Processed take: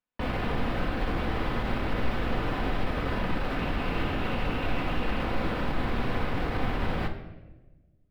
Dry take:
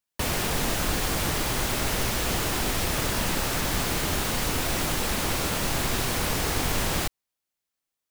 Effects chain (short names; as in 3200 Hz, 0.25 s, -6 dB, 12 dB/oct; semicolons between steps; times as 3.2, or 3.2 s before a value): 3.57–5.22 bell 2700 Hz +7 dB 0.22 oct; limiter -19.5 dBFS, peak gain reduction 6.5 dB; air absorption 430 m; reverb RT60 1.2 s, pre-delay 4 ms, DRR 3.5 dB; gain +1 dB